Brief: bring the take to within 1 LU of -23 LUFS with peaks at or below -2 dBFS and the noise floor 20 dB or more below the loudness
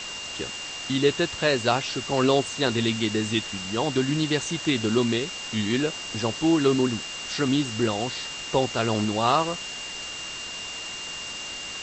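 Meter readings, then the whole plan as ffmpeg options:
steady tone 2800 Hz; tone level -35 dBFS; noise floor -36 dBFS; noise floor target -46 dBFS; loudness -25.5 LUFS; peak -6.5 dBFS; loudness target -23.0 LUFS
-> -af "bandreject=f=2.8k:w=30"
-af "afftdn=nr=10:nf=-36"
-af "volume=2.5dB"

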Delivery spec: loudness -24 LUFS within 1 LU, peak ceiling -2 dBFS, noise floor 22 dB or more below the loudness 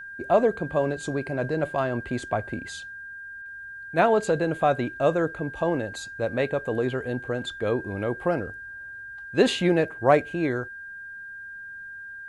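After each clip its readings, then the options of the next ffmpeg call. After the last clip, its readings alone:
steady tone 1600 Hz; tone level -37 dBFS; loudness -25.5 LUFS; peak -5.5 dBFS; loudness target -24.0 LUFS
-> -af "bandreject=f=1.6k:w=30"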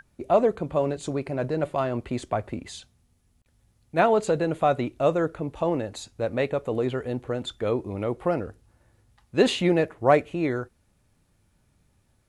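steady tone none; loudness -26.0 LUFS; peak -5.0 dBFS; loudness target -24.0 LUFS
-> -af "volume=2dB"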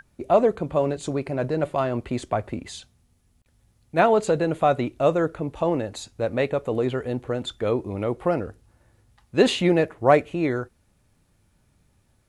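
loudness -24.0 LUFS; peak -3.0 dBFS; noise floor -65 dBFS

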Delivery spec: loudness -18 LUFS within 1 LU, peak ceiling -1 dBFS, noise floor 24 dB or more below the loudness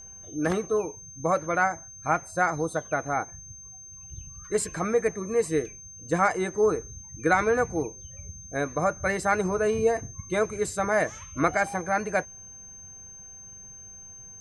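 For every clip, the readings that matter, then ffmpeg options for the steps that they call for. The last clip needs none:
steady tone 6300 Hz; tone level -43 dBFS; loudness -27.0 LUFS; peak -9.0 dBFS; loudness target -18.0 LUFS
-> -af "bandreject=f=6.3k:w=30"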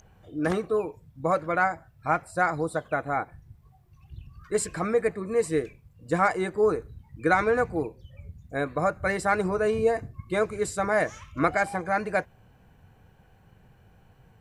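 steady tone none; loudness -27.0 LUFS; peak -9.0 dBFS; loudness target -18.0 LUFS
-> -af "volume=9dB,alimiter=limit=-1dB:level=0:latency=1"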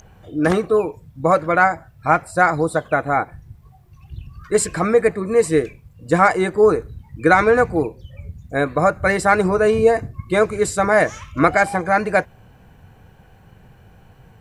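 loudness -18.0 LUFS; peak -1.0 dBFS; noise floor -49 dBFS

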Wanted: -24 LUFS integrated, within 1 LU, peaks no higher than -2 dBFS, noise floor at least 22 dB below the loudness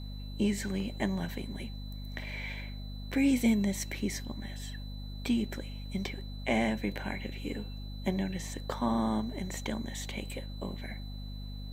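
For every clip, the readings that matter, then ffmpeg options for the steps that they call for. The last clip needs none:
hum 50 Hz; harmonics up to 250 Hz; hum level -38 dBFS; steady tone 4000 Hz; tone level -51 dBFS; loudness -34.5 LUFS; peak -15.0 dBFS; loudness target -24.0 LUFS
-> -af "bandreject=f=50:t=h:w=4,bandreject=f=100:t=h:w=4,bandreject=f=150:t=h:w=4,bandreject=f=200:t=h:w=4,bandreject=f=250:t=h:w=4"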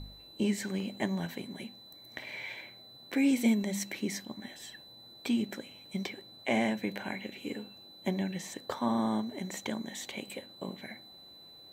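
hum none; steady tone 4000 Hz; tone level -51 dBFS
-> -af "bandreject=f=4k:w=30"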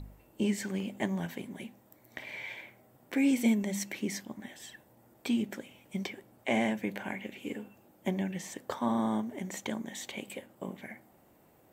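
steady tone none; loudness -34.5 LUFS; peak -15.0 dBFS; loudness target -24.0 LUFS
-> -af "volume=10.5dB"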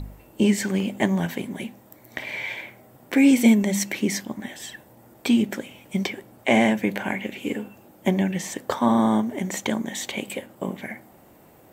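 loudness -24.0 LUFS; peak -4.5 dBFS; noise floor -52 dBFS

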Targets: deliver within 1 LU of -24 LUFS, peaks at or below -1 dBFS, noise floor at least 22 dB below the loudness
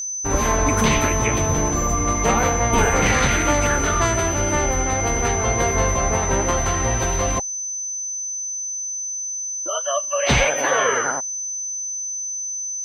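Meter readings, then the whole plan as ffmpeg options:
steady tone 6100 Hz; tone level -25 dBFS; loudness -20.5 LUFS; peak -5.5 dBFS; loudness target -24.0 LUFS
-> -af "bandreject=f=6.1k:w=30"
-af "volume=-3.5dB"

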